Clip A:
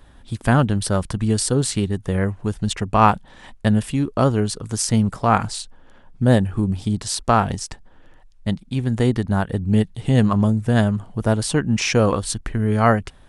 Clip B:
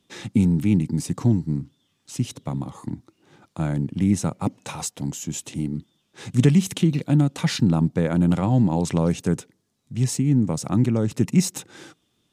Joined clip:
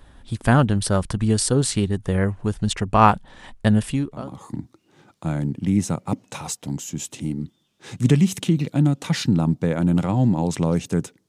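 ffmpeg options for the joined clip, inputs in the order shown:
ffmpeg -i cue0.wav -i cue1.wav -filter_complex "[0:a]apad=whole_dur=11.28,atrim=end=11.28,atrim=end=4.41,asetpts=PTS-STARTPTS[link_01];[1:a]atrim=start=2.27:end=9.62,asetpts=PTS-STARTPTS[link_02];[link_01][link_02]acrossfade=duration=0.48:curve1=qua:curve2=qua" out.wav

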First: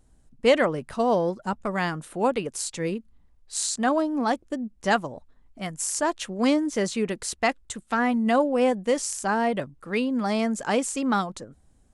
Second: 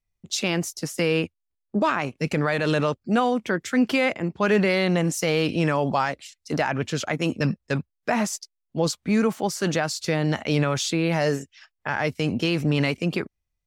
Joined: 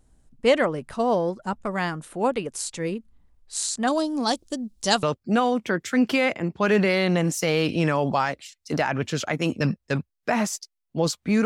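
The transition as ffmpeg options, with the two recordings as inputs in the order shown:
ffmpeg -i cue0.wav -i cue1.wav -filter_complex "[0:a]asettb=1/sr,asplit=3[link_01][link_02][link_03];[link_01]atrim=end=3.874[link_04];[link_02]atrim=start=3.87:end=5.03,asetpts=PTS-STARTPTS,afade=type=in:duration=0.004:curve=qsin,afade=type=out:start_time=1.156:duration=0.004:curve=qsin,highshelf=frequency=2900:width_type=q:width=1.5:gain=11.5[link_05];[link_03]atrim=start=5.026[link_06];[link_04][link_05]acrossfade=duration=0.004:curve1=hsin:curve2=qsin[link_07];[link_07][link_06]acrossfade=duration=0.004:curve1=qsin:curve2=hsin,apad=whole_dur=11.45,atrim=end=11.45,atrim=end=5.032[link_08];[1:a]atrim=start=2.828:end=9.25[link_09];[link_08][link_09]acrossfade=duration=0.004:curve1=hsin:curve2=hsin" out.wav

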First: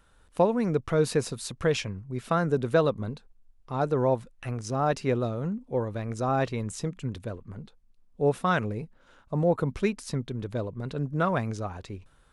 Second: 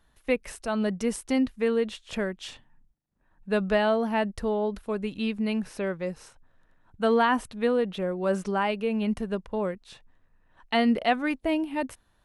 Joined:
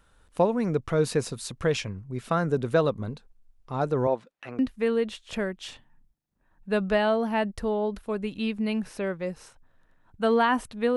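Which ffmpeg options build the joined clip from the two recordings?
ffmpeg -i cue0.wav -i cue1.wav -filter_complex "[0:a]asettb=1/sr,asplit=3[link_01][link_02][link_03];[link_01]atrim=end=4.074[link_04];[link_02]atrim=start=4.07:end=4.59,asetpts=PTS-STARTPTS,afade=type=in:duration=0.004:curve=qsin,afade=type=out:start_time=0.516:duration=0.004:curve=qsin,highpass=280,lowpass=4800[link_05];[link_03]atrim=start=4.586[link_06];[link_04][link_05]acrossfade=duration=0.004:curve1=hsin:curve2=qsin[link_07];[link_07][link_06]acrossfade=duration=0.004:curve1=qsin:curve2=hsin,apad=whole_dur=10.96,atrim=end=10.96,atrim=end=4.592[link_08];[1:a]atrim=start=1.388:end=7.76[link_09];[link_08][link_09]acrossfade=duration=0.004:curve1=hsin:curve2=hsin" out.wav

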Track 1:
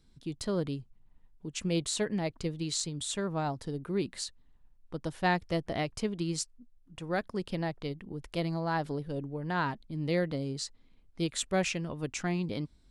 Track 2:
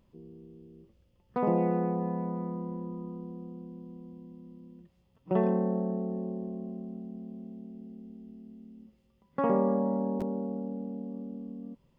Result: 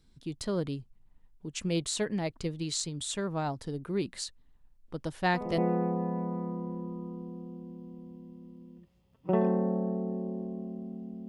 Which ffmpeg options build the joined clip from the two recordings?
ffmpeg -i cue0.wav -i cue1.wav -filter_complex "[1:a]asplit=2[link_01][link_02];[0:a]apad=whole_dur=11.28,atrim=end=11.28,atrim=end=5.582[link_03];[link_02]atrim=start=1.598:end=7.3[link_04];[link_01]atrim=start=0.9:end=1.6,asetpts=PTS-STARTPTS,volume=-10.5dB,afade=type=in:duration=0.004:curve=hsin,afade=type=out:start_time=0.696:duration=0.004:curve=hsin,adelay=4880[link_05];[link_03][link_04]acrossfade=duration=0.004:curve1=hsin:curve2=hsin[link_06];[link_06][link_05]amix=inputs=2:normalize=0" out.wav

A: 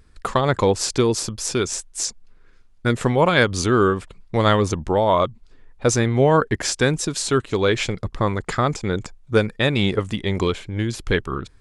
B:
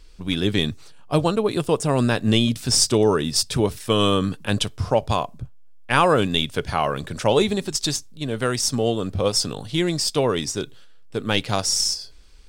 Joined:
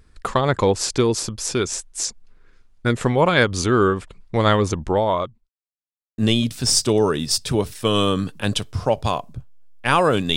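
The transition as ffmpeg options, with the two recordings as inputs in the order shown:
ffmpeg -i cue0.wav -i cue1.wav -filter_complex "[0:a]apad=whole_dur=10.36,atrim=end=10.36,asplit=2[link_01][link_02];[link_01]atrim=end=5.49,asetpts=PTS-STARTPTS,afade=type=out:start_time=4.96:duration=0.53[link_03];[link_02]atrim=start=5.49:end=6.18,asetpts=PTS-STARTPTS,volume=0[link_04];[1:a]atrim=start=2.23:end=6.41,asetpts=PTS-STARTPTS,afade=type=in:duration=0.004:curve=hsin[link_05];[link_03][link_04][link_05]concat=n=3:v=0:a=1" out.wav

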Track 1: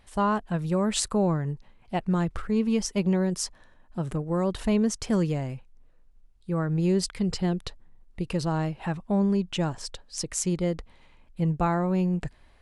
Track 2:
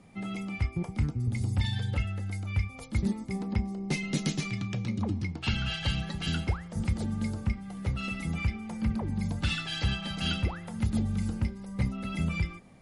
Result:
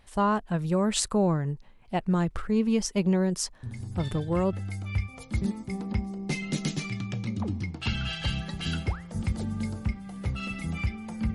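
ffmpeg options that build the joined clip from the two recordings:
ffmpeg -i cue0.wav -i cue1.wav -filter_complex "[1:a]asplit=2[link_01][link_02];[0:a]apad=whole_dur=11.34,atrim=end=11.34,atrim=end=4.532[link_03];[link_02]atrim=start=2.138:end=8.95[link_04];[link_01]atrim=start=1.24:end=2.14,asetpts=PTS-STARTPTS,volume=-7.5dB,afade=type=in:duration=0.004:curve=hsin,afade=type=out:start_time=0.896:duration=0.004:curve=hsin,adelay=3630[link_05];[link_03][link_04]acrossfade=duration=0.004:curve1=hsin:curve2=hsin[link_06];[link_06][link_05]amix=inputs=2:normalize=0" out.wav

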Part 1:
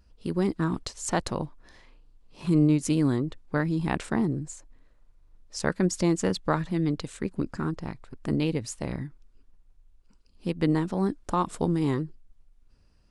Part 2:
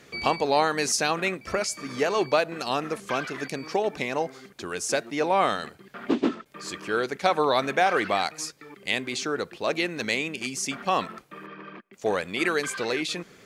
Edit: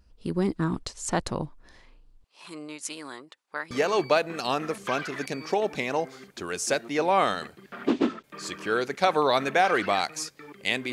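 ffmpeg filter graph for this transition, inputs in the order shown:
ffmpeg -i cue0.wav -i cue1.wav -filter_complex "[0:a]asettb=1/sr,asplit=3[link_01][link_02][link_03];[link_01]atrim=end=2.244[link_04];[link_02]atrim=start=2.24:end=3.71,asetpts=PTS-STARTPTS,afade=type=in:duration=0.004:curve=qsin,afade=type=out:start_time=1.466:duration=0.004:curve=qsin,highpass=910[link_05];[link_03]atrim=start=3.706[link_06];[link_04][link_05]acrossfade=duration=0.004:curve1=hsin:curve2=qsin[link_07];[link_07][link_06]acrossfade=duration=0.004:curve1=qsin:curve2=hsin,apad=whole_dur=10.92,atrim=end=10.92,atrim=end=3.712[link_08];[1:a]atrim=start=1.928:end=9.14[link_09];[link_08][link_09]acrossfade=duration=0.004:curve1=hsin:curve2=hsin" out.wav

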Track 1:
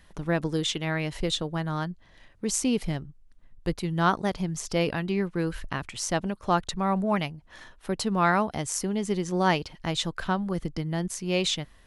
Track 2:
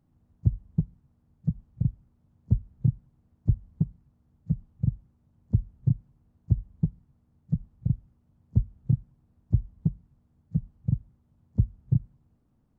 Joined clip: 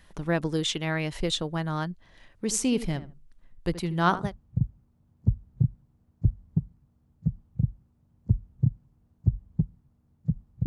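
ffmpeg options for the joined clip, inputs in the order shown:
ffmpeg -i cue0.wav -i cue1.wav -filter_complex "[0:a]asettb=1/sr,asplit=3[link_01][link_02][link_03];[link_01]atrim=end=2.434[link_04];[link_02]atrim=start=2.43:end=4.34,asetpts=PTS-STARTPTS,afade=type=in:duration=0.004:curve=qsin,afade=type=out:start_time=1.906:duration=0.004:curve=qsin,asplit=2[link_05][link_06];[link_06]adelay=76,lowpass=frequency=1800:poles=1,volume=-13dB,asplit=2[link_07][link_08];[link_08]adelay=76,lowpass=frequency=1800:poles=1,volume=0.2[link_09];[link_05][link_07][link_09]amix=inputs=3:normalize=0,atrim=end_sample=84231[link_10];[link_03]atrim=start=4.336[link_11];[link_04][link_10]acrossfade=duration=0.004:curve1=hsin:curve2=qsin[link_12];[link_12][link_11]acrossfade=duration=0.004:curve1=qsin:curve2=hsin,apad=whole_dur=10.66,atrim=end=10.66,atrim=end=4.34,asetpts=PTS-STARTPTS[link_13];[1:a]atrim=start=1.42:end=7.9,asetpts=PTS-STARTPTS[link_14];[link_13][link_14]acrossfade=duration=0.16:curve1=tri:curve2=tri" out.wav

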